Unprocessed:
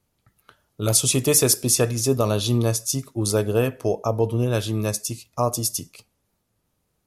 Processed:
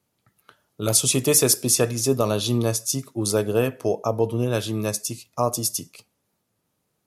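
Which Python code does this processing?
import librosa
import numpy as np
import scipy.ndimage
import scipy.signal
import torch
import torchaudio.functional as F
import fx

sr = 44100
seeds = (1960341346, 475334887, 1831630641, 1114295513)

y = scipy.signal.sosfilt(scipy.signal.butter(2, 120.0, 'highpass', fs=sr, output='sos'), x)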